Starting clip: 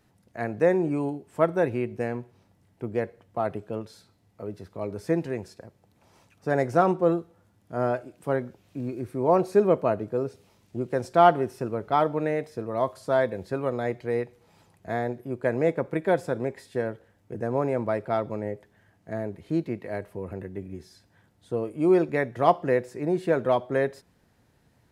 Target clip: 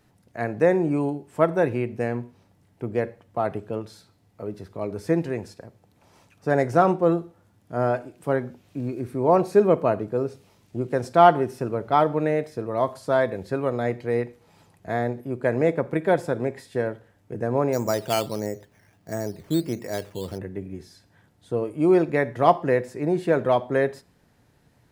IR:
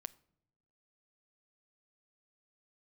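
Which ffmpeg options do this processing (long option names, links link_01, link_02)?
-filter_complex "[1:a]atrim=start_sample=2205,atrim=end_sample=6174[link_01];[0:a][link_01]afir=irnorm=-1:irlink=0,asplit=3[link_02][link_03][link_04];[link_02]afade=type=out:start_time=17.72:duration=0.02[link_05];[link_03]acrusher=samples=9:mix=1:aa=0.000001:lfo=1:lforange=5.4:lforate=1.5,afade=type=in:start_time=17.72:duration=0.02,afade=type=out:start_time=20.37:duration=0.02[link_06];[link_04]afade=type=in:start_time=20.37:duration=0.02[link_07];[link_05][link_06][link_07]amix=inputs=3:normalize=0,volume=7dB"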